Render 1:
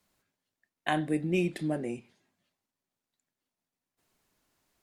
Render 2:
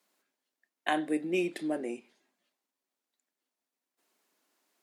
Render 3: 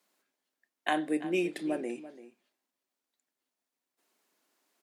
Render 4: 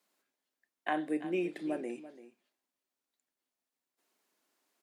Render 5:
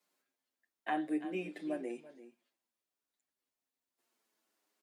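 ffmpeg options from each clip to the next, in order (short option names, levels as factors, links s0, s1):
-af "highpass=f=250:w=0.5412,highpass=f=250:w=1.3066"
-filter_complex "[0:a]asplit=2[s0][s1];[s1]adelay=338.2,volume=0.178,highshelf=f=4000:g=-7.61[s2];[s0][s2]amix=inputs=2:normalize=0"
-filter_complex "[0:a]acrossover=split=2600[s0][s1];[s1]acompressor=threshold=0.00251:ratio=4:attack=1:release=60[s2];[s0][s2]amix=inputs=2:normalize=0,volume=0.708"
-filter_complex "[0:a]asplit=2[s0][s1];[s1]adelay=8,afreqshift=-0.57[s2];[s0][s2]amix=inputs=2:normalize=1"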